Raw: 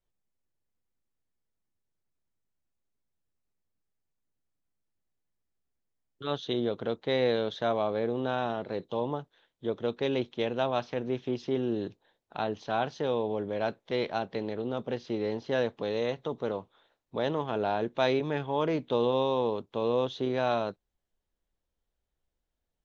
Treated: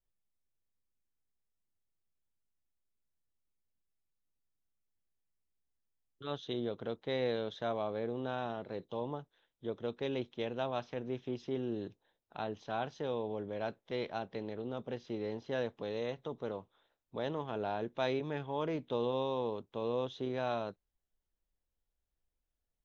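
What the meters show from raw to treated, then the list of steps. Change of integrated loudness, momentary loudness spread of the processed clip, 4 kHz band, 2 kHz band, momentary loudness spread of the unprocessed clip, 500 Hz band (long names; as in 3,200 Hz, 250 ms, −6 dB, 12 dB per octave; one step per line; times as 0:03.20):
−7.5 dB, 7 LU, −7.5 dB, −7.5 dB, 7 LU, −7.5 dB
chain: low-shelf EQ 77 Hz +6 dB
notch filter 4,400 Hz, Q 13
level −7.5 dB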